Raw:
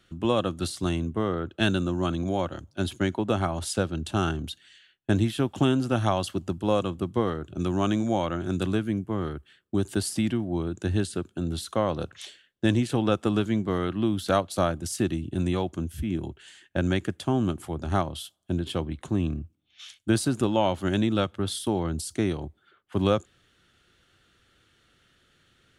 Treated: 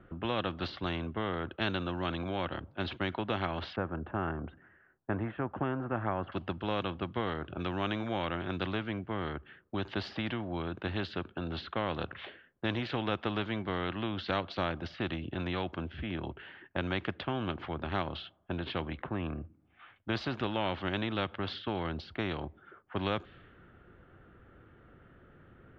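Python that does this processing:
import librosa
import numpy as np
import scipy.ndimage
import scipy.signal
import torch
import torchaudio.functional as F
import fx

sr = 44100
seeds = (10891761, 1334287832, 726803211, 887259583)

y = fx.lowpass(x, sr, hz=1500.0, slope=24, at=(3.76, 6.32))
y = fx.lowpass(y, sr, hz=2100.0, slope=12, at=(19.02, 19.96))
y = scipy.signal.sosfilt(scipy.signal.bessel(8, 2200.0, 'lowpass', norm='mag', fs=sr, output='sos'), y)
y = fx.env_lowpass(y, sr, base_hz=1200.0, full_db=-21.5)
y = fx.spectral_comp(y, sr, ratio=2.0)
y = y * 10.0 ** (-5.5 / 20.0)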